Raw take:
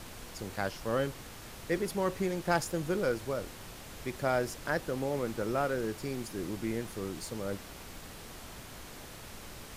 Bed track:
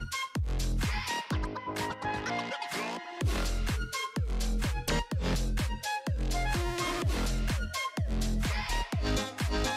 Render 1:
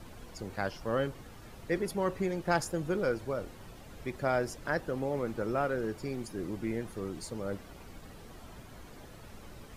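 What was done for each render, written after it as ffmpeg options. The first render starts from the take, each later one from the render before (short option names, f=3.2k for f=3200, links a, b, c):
-af "afftdn=nr=10:nf=-48"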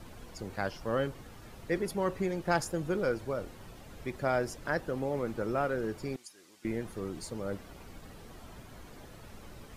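-filter_complex "[0:a]asettb=1/sr,asplit=3[a][b][c];[a]atrim=end=6.164[d];[b]atrim=start=6.16:end=6.65,asetpts=PTS-STARTPTS,afade=t=in:d=0.004:c=qsin,afade=t=out:st=0.486:d=0.004:c=qsin,bandpass=f=6.7k:t=q:w=0.74[e];[c]atrim=start=6.646[f];[d][e]acrossfade=d=0.004:c1=hsin:c2=qsin[g];[g][f]acrossfade=d=0.004:c1=qsin:c2=hsin"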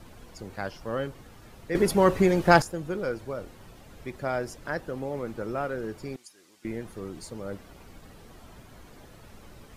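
-filter_complex "[0:a]asplit=3[a][b][c];[a]atrim=end=1.752[d];[b]atrim=start=1.748:end=2.622,asetpts=PTS-STARTPTS,volume=11dB[e];[c]atrim=start=2.618[f];[d][e]acrossfade=d=0.004:c1=hsin:c2=hsin[g];[g][f]acrossfade=d=0.004:c1=hsin:c2=hsin"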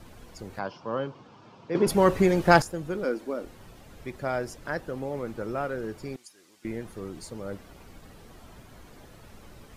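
-filter_complex "[0:a]asettb=1/sr,asplit=3[a][b][c];[a]atrim=end=0.594[d];[b]atrim=start=0.59:end=1.87,asetpts=PTS-STARTPTS,afade=t=in:d=0.004:c=qsin,afade=t=out:st=1.276:d=0.004:c=qsin,highpass=f=120:w=0.5412,highpass=f=120:w=1.3066,equalizer=f=990:t=q:w=4:g=8,equalizer=f=1.9k:t=q:w=4:g=-10,equalizer=f=4k:t=q:w=4:g=-4,lowpass=f=5.2k:w=0.5412,lowpass=f=5.2k:w=1.3066[e];[c]atrim=start=1.866[f];[d][e]acrossfade=d=0.004:c1=hsin:c2=qsin[g];[g][f]acrossfade=d=0.004:c1=qsin:c2=hsin,asettb=1/sr,asplit=3[h][i][j];[h]atrim=end=3.044[k];[i]atrim=start=3.04:end=3.45,asetpts=PTS-STARTPTS,afade=t=in:d=0.004:c=qsin,afade=t=out:st=0.406:d=0.004:c=qsin,lowshelf=f=180:t=q:w=3:g=-12.5[l];[j]atrim=start=3.446[m];[k][l]acrossfade=d=0.004:c1=hsin:c2=qsin[n];[n][m]acrossfade=d=0.004:c1=qsin:c2=hsin"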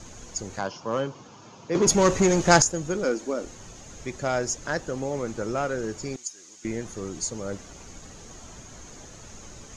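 -filter_complex "[0:a]asplit=2[a][b];[b]aeval=exprs='0.0794*(abs(mod(val(0)/0.0794+3,4)-2)-1)':c=same,volume=-6.5dB[c];[a][c]amix=inputs=2:normalize=0,lowpass=f=6.6k:t=q:w=10"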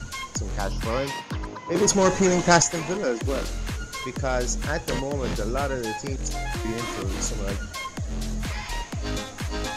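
-filter_complex "[1:a]volume=0.5dB[a];[0:a][a]amix=inputs=2:normalize=0"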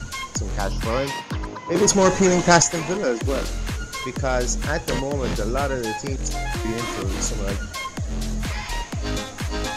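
-af "volume=3dB,alimiter=limit=-1dB:level=0:latency=1"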